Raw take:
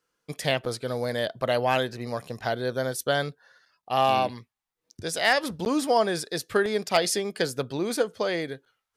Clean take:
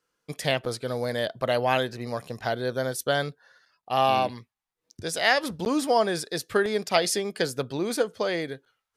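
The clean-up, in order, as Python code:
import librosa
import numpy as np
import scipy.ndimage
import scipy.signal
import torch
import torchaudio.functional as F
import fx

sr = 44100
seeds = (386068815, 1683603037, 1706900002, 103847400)

y = fx.fix_declip(x, sr, threshold_db=-11.5)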